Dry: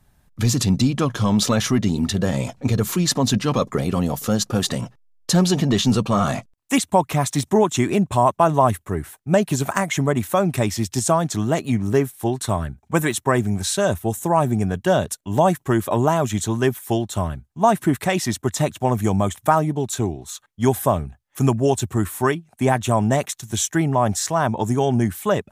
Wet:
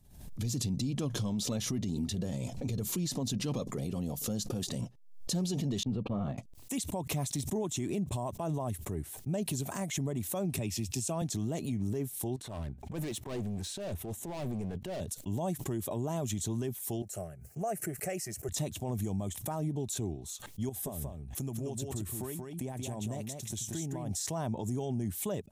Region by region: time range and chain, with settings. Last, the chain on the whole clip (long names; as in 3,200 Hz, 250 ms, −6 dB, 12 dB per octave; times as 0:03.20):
0:05.83–0:06.38: noise gate −23 dBFS, range −28 dB + high-frequency loss of the air 490 metres
0:10.58–0:11.22: high-pass filter 42 Hz + parametric band 2,600 Hz +11 dB 0.27 octaves + multiband upward and downward expander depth 40%
0:12.36–0:15.01: bass and treble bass −5 dB, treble −12 dB + transient designer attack −11 dB, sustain +5 dB + gain into a clipping stage and back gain 24 dB
0:17.02–0:18.49: high-pass filter 180 Hz + phaser with its sweep stopped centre 970 Hz, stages 6
0:20.69–0:24.11: downward compressor 5 to 1, threshold −26 dBFS + single-tap delay 182 ms −4 dB
whole clip: parametric band 1,400 Hz −14 dB 1.6 octaves; brickwall limiter −18.5 dBFS; background raised ahead of every attack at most 73 dB per second; level −7.5 dB